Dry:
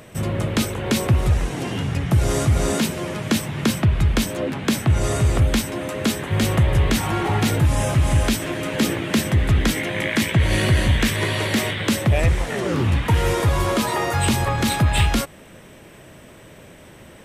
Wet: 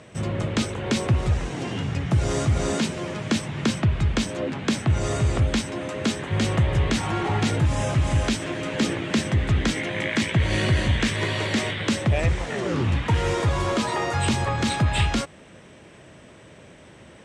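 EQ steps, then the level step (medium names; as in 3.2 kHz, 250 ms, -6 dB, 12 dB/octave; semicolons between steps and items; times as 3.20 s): high-pass 54 Hz; low-pass 8.1 kHz 24 dB/octave; -3.0 dB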